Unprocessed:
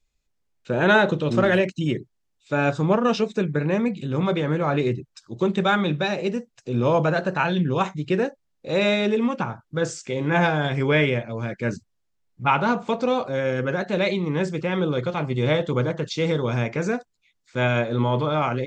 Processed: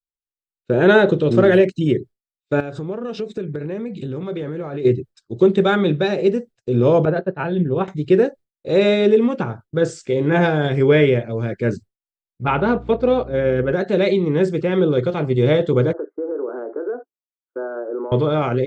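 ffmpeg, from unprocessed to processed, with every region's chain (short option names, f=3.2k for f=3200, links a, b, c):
-filter_complex "[0:a]asettb=1/sr,asplit=3[a][b][c];[a]atrim=end=2.604[d];[b]atrim=start=2.6:end=4.85,asetpts=PTS-STARTPTS,afade=t=in:d=0.004:c=qsin,afade=t=out:st=2.246:d=0.004:c=qsin,acompressor=threshold=-28dB:ratio=20:attack=3.2:release=140:knee=1:detection=peak,asoftclip=type=hard:threshold=-22dB[e];[c]atrim=start=4.846[f];[d][e]acrossfade=d=0.004:c1=hsin:c2=qsin[g];[g][f]acrossfade=d=0.004:c1=qsin:c2=hsin,asettb=1/sr,asplit=3[h][i][j];[h]atrim=end=7.054[k];[i]atrim=start=7.05:end=7.88,asetpts=PTS-STARTPTS,afade=t=in:d=0.004:c=qsin,afade=t=out:st=0.826:d=0.004:c=qsin,lowpass=f=5.2k:w=0.5412,lowpass=f=5.2k:w=1.3066,agate=range=-33dB:threshold=-20dB:ratio=3:release=100:detection=peak,highshelf=f=2.4k:g=-11[l];[j]atrim=start=7.876[m];[k][l]acrossfade=d=0.004:c1=hsin:c2=qsin[n];[n][m]acrossfade=d=0.004:c1=qsin:c2=hsin,asettb=1/sr,asplit=3[o][p][q];[o]atrim=end=12.474[r];[p]atrim=start=12.47:end=13.73,asetpts=PTS-STARTPTS,afade=t=in:d=0.004:c=qsin,afade=t=out:st=1.256:d=0.004:c=qsin,agate=range=-6dB:threshold=-27dB:ratio=16:release=100:detection=peak,lowpass=3.7k,aeval=exprs='val(0)+0.0112*(sin(2*PI*60*n/s)+sin(2*PI*2*60*n/s)/2+sin(2*PI*3*60*n/s)/3+sin(2*PI*4*60*n/s)/4+sin(2*PI*5*60*n/s)/5)':c=same[s];[q]atrim=start=13.726[t];[r][s]acrossfade=d=0.004:c1=hsin:c2=qsin[u];[u][t]acrossfade=d=0.004:c1=qsin:c2=hsin,asettb=1/sr,asplit=3[v][w][x];[v]atrim=end=15.934[y];[w]atrim=start=15.93:end=18.12,asetpts=PTS-STARTPTS,afade=t=in:d=0.004:c=qsin,afade=t=out:st=2.186:d=0.004:c=qsin,asuperpass=centerf=640:order=20:qfactor=0.51,acompressor=threshold=-31dB:ratio=3:attack=3.2:release=140:knee=1:detection=peak[z];[x]atrim=start=18.116[aa];[y][z]acrossfade=d=0.004:c1=hsin:c2=qsin[ab];[ab][aa]acrossfade=d=0.004:c1=qsin:c2=hsin,agate=range=-33dB:threshold=-38dB:ratio=3:detection=peak,equalizer=f=100:t=o:w=0.67:g=4,equalizer=f=400:t=o:w=0.67:g=8,equalizer=f=1k:t=o:w=0.67:g=-6,equalizer=f=2.5k:t=o:w=0.67:g=-4,equalizer=f=6.3k:t=o:w=0.67:g=-7,volume=3dB"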